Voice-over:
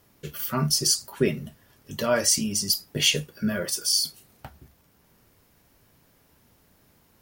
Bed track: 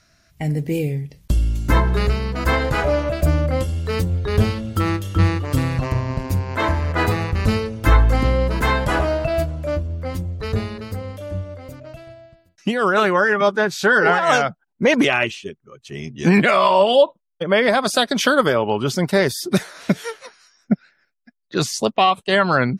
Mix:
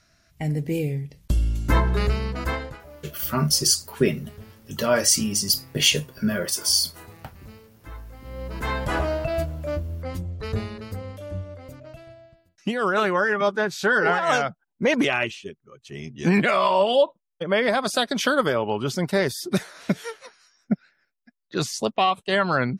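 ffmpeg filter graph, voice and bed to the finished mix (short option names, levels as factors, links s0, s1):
-filter_complex "[0:a]adelay=2800,volume=1.33[s0];[1:a]volume=7.94,afade=t=out:st=2.26:d=0.53:silence=0.0707946,afade=t=in:st=8.23:d=0.75:silence=0.0841395[s1];[s0][s1]amix=inputs=2:normalize=0"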